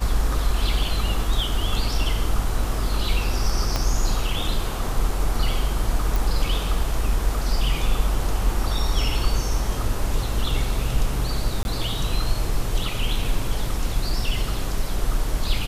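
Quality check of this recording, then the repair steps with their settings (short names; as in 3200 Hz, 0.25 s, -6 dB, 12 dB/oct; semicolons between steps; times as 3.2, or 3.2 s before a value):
3.76 pop -8 dBFS
6.16 pop
11.63–11.65 gap 21 ms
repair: de-click; interpolate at 11.63, 21 ms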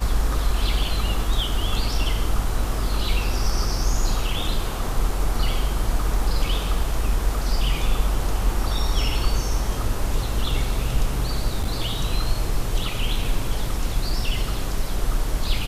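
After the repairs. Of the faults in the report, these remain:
3.76 pop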